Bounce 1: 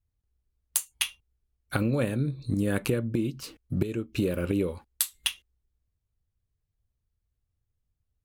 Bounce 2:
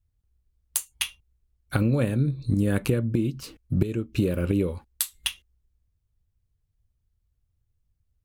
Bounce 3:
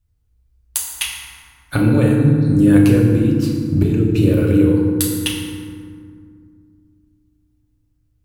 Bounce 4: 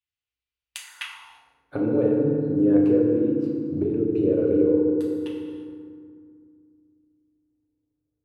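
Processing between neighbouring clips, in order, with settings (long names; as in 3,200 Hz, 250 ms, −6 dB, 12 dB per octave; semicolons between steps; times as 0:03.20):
low-shelf EQ 200 Hz +7.5 dB
feedback delay network reverb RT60 2.1 s, low-frequency decay 1.55×, high-frequency decay 0.5×, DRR −2 dB; level +4 dB
reverb whose tail is shaped and stops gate 370 ms flat, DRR 10 dB; band-pass filter sweep 2,800 Hz → 450 Hz, 0:00.70–0:01.65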